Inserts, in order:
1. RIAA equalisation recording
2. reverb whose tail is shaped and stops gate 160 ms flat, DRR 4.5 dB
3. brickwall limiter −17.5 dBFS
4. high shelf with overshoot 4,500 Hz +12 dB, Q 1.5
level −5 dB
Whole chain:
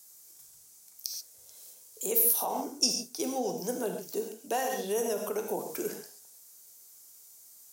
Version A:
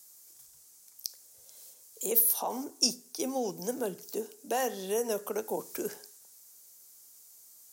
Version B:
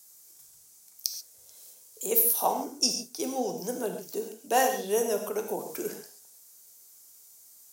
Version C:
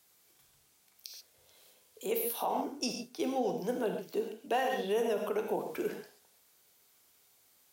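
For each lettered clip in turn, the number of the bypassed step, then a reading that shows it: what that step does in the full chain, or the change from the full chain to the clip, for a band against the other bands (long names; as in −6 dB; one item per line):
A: 2, change in momentary loudness spread −1 LU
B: 3, change in crest factor +4.0 dB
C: 4, 8 kHz band −13.5 dB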